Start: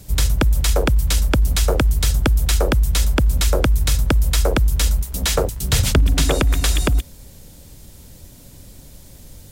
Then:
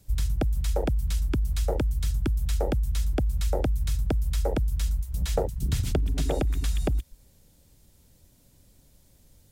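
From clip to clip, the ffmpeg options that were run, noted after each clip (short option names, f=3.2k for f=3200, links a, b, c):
-filter_complex "[0:a]afwtdn=0.141,acrossover=split=820[a][b];[a]acompressor=threshold=-23dB:ratio=6[c];[c][b]amix=inputs=2:normalize=0"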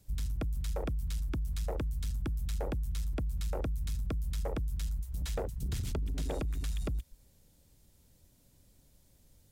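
-af "asoftclip=type=tanh:threshold=-23dB,volume=-5.5dB"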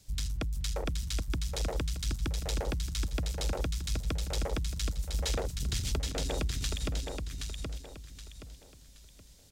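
-filter_complex "[0:a]acrossover=split=6500[a][b];[a]crystalizer=i=6:c=0[c];[c][b]amix=inputs=2:normalize=0,aecho=1:1:773|1546|2319|3092:0.596|0.197|0.0649|0.0214"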